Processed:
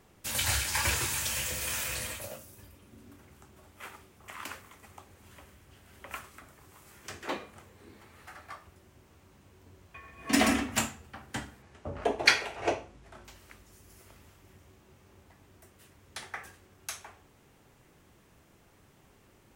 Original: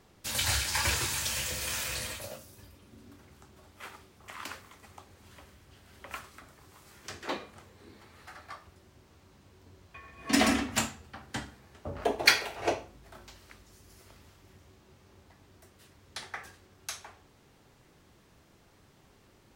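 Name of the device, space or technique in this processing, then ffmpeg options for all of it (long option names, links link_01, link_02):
exciter from parts: -filter_complex "[0:a]asplit=2[link_01][link_02];[link_02]highpass=3900,asoftclip=type=tanh:threshold=-29.5dB,highpass=frequency=2500:width=0.5412,highpass=frequency=2500:width=1.3066,volume=-6dB[link_03];[link_01][link_03]amix=inputs=2:normalize=0,asettb=1/sr,asplit=3[link_04][link_05][link_06];[link_04]atrim=end=11.624[link_07];[link_05]atrim=start=11.62:end=13.25,asetpts=PTS-STARTPTS,afade=type=in:duration=0.004:curve=qsin,afade=type=out:start_time=1.626:duration=0.004:curve=qsin,lowpass=7700[link_08];[link_06]atrim=start=13.246[link_09];[link_07][link_08]acrossfade=duration=0.004:curve1=hsin:curve2=qsin[link_10];[link_10][link_09]acrossfade=duration=0.004:curve1=qsin:curve2=hsin"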